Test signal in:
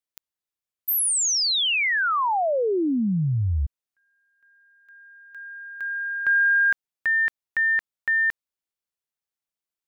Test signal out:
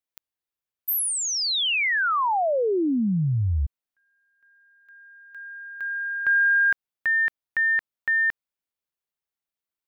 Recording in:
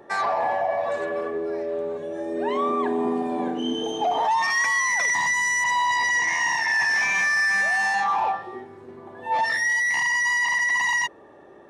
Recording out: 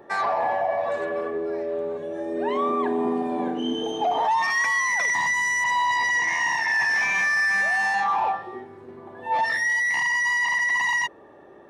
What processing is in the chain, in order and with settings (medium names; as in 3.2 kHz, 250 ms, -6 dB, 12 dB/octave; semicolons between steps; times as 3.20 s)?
peaking EQ 7.2 kHz -4.5 dB 1.4 oct